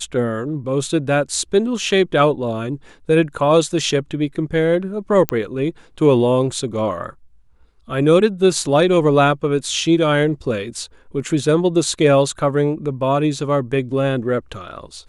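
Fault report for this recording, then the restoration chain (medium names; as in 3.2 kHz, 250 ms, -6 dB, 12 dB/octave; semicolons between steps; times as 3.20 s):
5.29 s: pop -3 dBFS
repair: de-click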